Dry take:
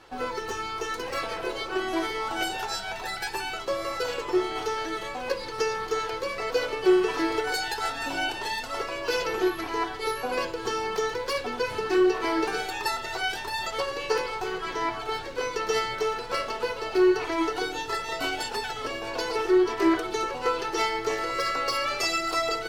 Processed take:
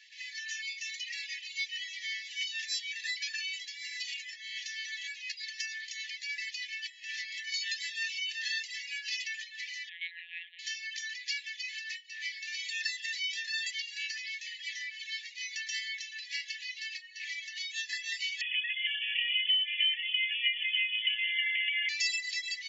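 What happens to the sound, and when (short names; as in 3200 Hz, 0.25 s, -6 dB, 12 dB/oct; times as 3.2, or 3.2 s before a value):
0.67–1.84 comb 3.7 ms, depth 81%
9.89–10.59 monotone LPC vocoder at 8 kHz 170 Hz
18.41–21.89 inverted band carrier 3400 Hz
whole clip: compressor 10:1, threshold -26 dBFS; FFT band-pass 1700–7400 Hz; reverb removal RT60 0.54 s; gain +1.5 dB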